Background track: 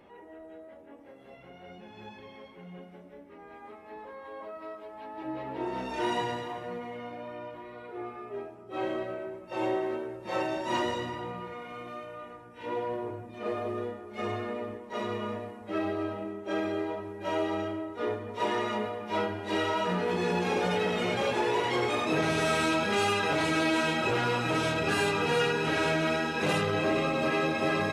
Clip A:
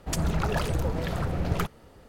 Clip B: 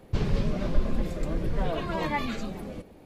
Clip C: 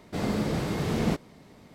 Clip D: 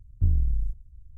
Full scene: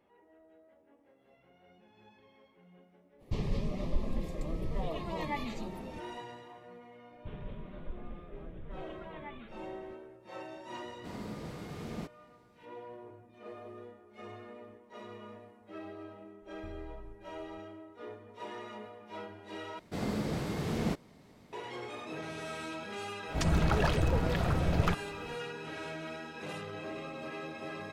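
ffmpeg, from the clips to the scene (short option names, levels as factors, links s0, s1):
-filter_complex "[2:a]asplit=2[s0][s1];[3:a]asplit=2[s2][s3];[0:a]volume=0.2[s4];[s0]asuperstop=centerf=1500:order=4:qfactor=3.2[s5];[s1]aresample=8000,aresample=44100[s6];[4:a]acompressor=threshold=0.0447:ratio=6:attack=3.2:release=140:knee=1:detection=peak[s7];[1:a]acrossover=split=6200[s8][s9];[s9]acompressor=threshold=0.00282:ratio=4:attack=1:release=60[s10];[s8][s10]amix=inputs=2:normalize=0[s11];[s4]asplit=2[s12][s13];[s12]atrim=end=19.794[s14];[s3]atrim=end=1.74,asetpts=PTS-STARTPTS,volume=0.501[s15];[s13]atrim=start=21.526[s16];[s5]atrim=end=3.05,asetpts=PTS-STARTPTS,volume=0.447,afade=t=in:d=0.05,afade=t=out:st=3:d=0.05,adelay=3180[s17];[s6]atrim=end=3.05,asetpts=PTS-STARTPTS,volume=0.133,afade=t=in:d=0.004:c=hsin,afade=t=out:st=3.046:d=0.004:c=hsin,adelay=7120[s18];[s2]atrim=end=1.74,asetpts=PTS-STARTPTS,volume=0.188,afade=t=in:d=0.004:c=hsin,afade=t=out:st=1.736:d=0.004:c=hsin,adelay=10910[s19];[s7]atrim=end=1.17,asetpts=PTS-STARTPTS,volume=0.141,afade=t=in:d=0.004:c=hsin,afade=t=out:st=1.166:d=0.004:c=hsin,adelay=16420[s20];[s11]atrim=end=2.08,asetpts=PTS-STARTPTS,volume=0.891,afade=t=in:d=0.004:c=hsin,afade=t=out:st=2.076:d=0.004:c=hsin,adelay=23280[s21];[s14][s15]acrossfade=d=0.004:c1=hsin:c2=hsin[s22];[s22][s16]acrossfade=d=0.004:c1=hsin:c2=hsin[s23];[s23][s17][s18][s19][s20][s21]amix=inputs=6:normalize=0"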